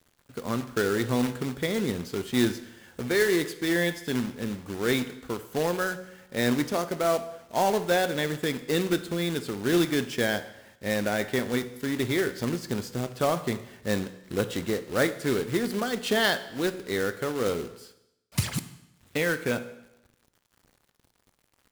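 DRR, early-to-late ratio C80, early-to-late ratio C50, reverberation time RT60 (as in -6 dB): 10.5 dB, 15.5 dB, 13.0 dB, 0.85 s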